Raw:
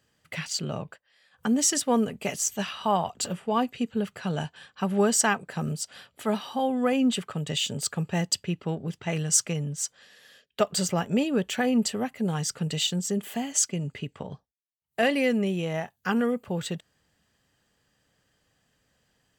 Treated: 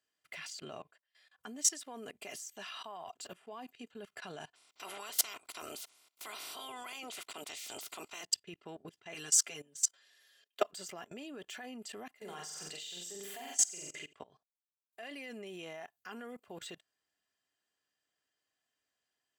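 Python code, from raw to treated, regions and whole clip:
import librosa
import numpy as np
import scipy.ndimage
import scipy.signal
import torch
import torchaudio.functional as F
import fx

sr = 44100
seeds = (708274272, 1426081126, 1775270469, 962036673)

y = fx.spec_clip(x, sr, under_db=30, at=(4.54, 8.23), fade=0.02)
y = fx.notch(y, sr, hz=1700.0, q=6.5, at=(4.54, 8.23), fade=0.02)
y = fx.chain(y, sr, fx.highpass(hz=260.0, slope=12),
    fx.high_shelf(hz=4500.0, db=5.0),
    fx.comb(ms=7.3, depth=0.92), at=(9.14, 10.62))
y = fx.chain(y, sr, fx.low_shelf(hz=240.0, db=-9.5),
    fx.notch(hz=230.0, q=6.1),
    fx.room_flutter(wall_m=7.8, rt60_s=0.73), at=(12.15, 14.13))
y = fx.highpass(y, sr, hz=660.0, slope=6)
y = y + 0.42 * np.pad(y, (int(2.9 * sr / 1000.0), 0))[:len(y)]
y = fx.level_steps(y, sr, step_db=21)
y = F.gain(torch.from_numpy(y), -3.5).numpy()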